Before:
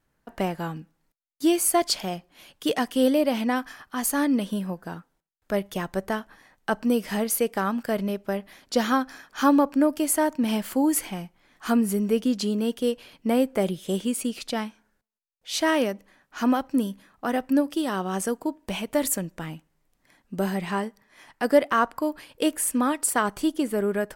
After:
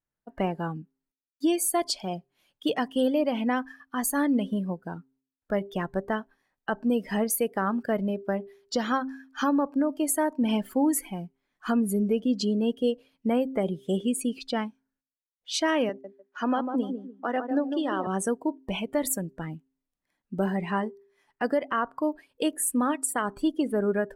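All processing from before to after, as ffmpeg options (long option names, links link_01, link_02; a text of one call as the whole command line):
ffmpeg -i in.wav -filter_complex "[0:a]asettb=1/sr,asplit=3[link_01][link_02][link_03];[link_01]atrim=end=15.894[link_04];[link_02]atrim=start=15.89:end=18.07,asetpts=PTS-STARTPTS,afade=type=in:duration=0.004:curve=qsin,afade=type=out:start_time=2.176:duration=0.004:curve=qsin,acrossover=split=250 7700:gain=0.224 1 0.2[link_05][link_06][link_07];[link_05][link_06][link_07]amix=inputs=3:normalize=0,agate=range=-9dB:threshold=-49dB:ratio=16:release=100:detection=peak,asplit=2[link_08][link_09];[link_09]adelay=149,lowpass=frequency=1800:poles=1,volume=-7dB,asplit=2[link_10][link_11];[link_11]adelay=149,lowpass=frequency=1800:poles=1,volume=0.33,asplit=2[link_12][link_13];[link_13]adelay=149,lowpass=frequency=1800:poles=1,volume=0.33,asplit=2[link_14][link_15];[link_15]adelay=149,lowpass=frequency=1800:poles=1,volume=0.33[link_16];[link_08][link_10][link_12][link_14][link_16]amix=inputs=5:normalize=0,atrim=end_sample=96138[link_17];[link_03]atrim=start=18.066[link_18];[link_04][link_17]acrossfade=duration=0.004:curve1=hsin:curve2=qsin[link_19];[link_19][link_18]acrossfade=duration=0.004:curve1=qsin:curve2=hsin,afftdn=noise_reduction=19:noise_floor=-36,bandreject=frequency=132.7:width_type=h:width=4,bandreject=frequency=265.4:width_type=h:width=4,bandreject=frequency=398.1:width_type=h:width=4,alimiter=limit=-16dB:level=0:latency=1:release=267" out.wav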